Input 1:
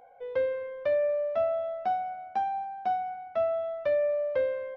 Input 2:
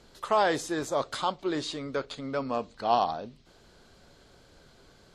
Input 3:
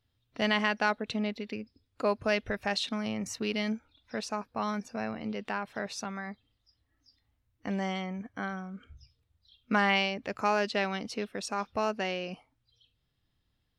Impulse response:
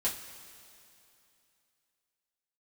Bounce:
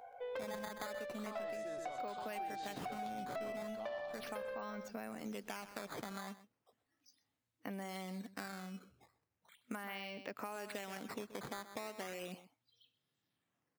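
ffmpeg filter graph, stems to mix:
-filter_complex "[0:a]equalizer=frequency=250:width_type=o:width=2:gain=-8,asoftclip=type=tanh:threshold=-30.5dB,volume=0dB,asplit=3[link_01][link_02][link_03];[link_02]volume=-11dB[link_04];[link_03]volume=-6dB[link_05];[1:a]acompressor=threshold=-28dB:ratio=6,adelay=950,volume=-15dB,asplit=2[link_06][link_07];[link_07]volume=-4.5dB[link_08];[2:a]highpass=160,acrusher=samples=9:mix=1:aa=0.000001:lfo=1:lforange=14.4:lforate=0.37,volume=-4dB,asplit=2[link_09][link_10];[link_10]volume=-18.5dB[link_11];[link_01][link_09]amix=inputs=2:normalize=0,highpass=110,acompressor=threshold=-37dB:ratio=2.5,volume=0dB[link_12];[3:a]atrim=start_sample=2205[link_13];[link_04][link_13]afir=irnorm=-1:irlink=0[link_14];[link_05][link_08][link_11]amix=inputs=3:normalize=0,aecho=0:1:127:1[link_15];[link_06][link_12][link_14][link_15]amix=inputs=4:normalize=0,acompressor=threshold=-40dB:ratio=6"

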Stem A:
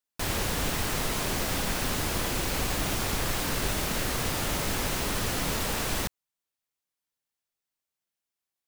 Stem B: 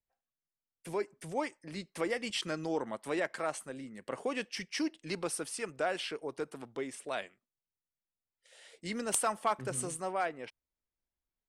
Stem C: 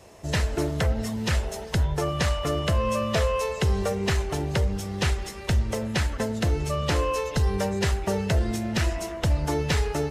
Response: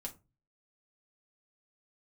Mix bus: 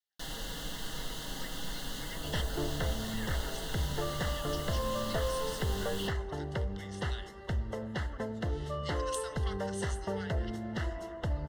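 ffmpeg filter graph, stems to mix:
-filter_complex "[0:a]volume=-7.5dB,asplit=2[link_01][link_02];[link_02]volume=-4dB[link_03];[1:a]highpass=1500,volume=2dB,asplit=2[link_04][link_05];[link_05]volume=-10.5dB[link_06];[2:a]bass=frequency=250:gain=-2,treble=frequency=4000:gain=-14,adelay=2000,volume=-8.5dB[link_07];[link_01][link_04]amix=inputs=2:normalize=0,asuperpass=centerf=3300:order=12:qfactor=0.71,acompressor=threshold=-41dB:ratio=6,volume=0dB[link_08];[3:a]atrim=start_sample=2205[link_09];[link_03][link_06]amix=inputs=2:normalize=0[link_10];[link_10][link_09]afir=irnorm=-1:irlink=0[link_11];[link_07][link_08][link_11]amix=inputs=3:normalize=0,asuperstop=centerf=2400:order=8:qfactor=3.9"

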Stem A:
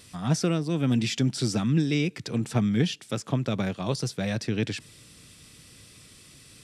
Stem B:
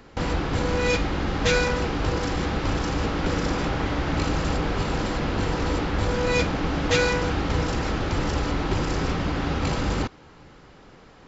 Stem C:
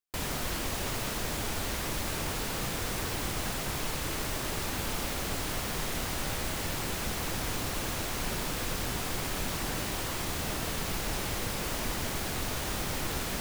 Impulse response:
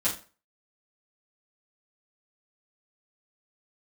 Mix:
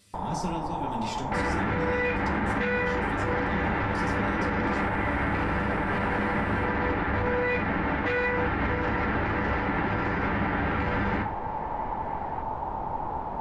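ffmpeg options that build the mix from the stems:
-filter_complex "[0:a]volume=-15dB,asplit=2[link_01][link_02];[link_02]volume=-4dB[link_03];[1:a]highpass=53,volume=19dB,asoftclip=hard,volume=-19dB,lowpass=frequency=1900:width_type=q:width=2.8,adelay=1150,volume=-3.5dB,asplit=2[link_04][link_05];[link_05]volume=-8dB[link_06];[2:a]lowpass=frequency=880:width_type=q:width=9.8,volume=-3dB[link_07];[3:a]atrim=start_sample=2205[link_08];[link_03][link_06]amix=inputs=2:normalize=0[link_09];[link_09][link_08]afir=irnorm=-1:irlink=0[link_10];[link_01][link_04][link_07][link_10]amix=inputs=4:normalize=0,alimiter=limit=-18dB:level=0:latency=1:release=113"

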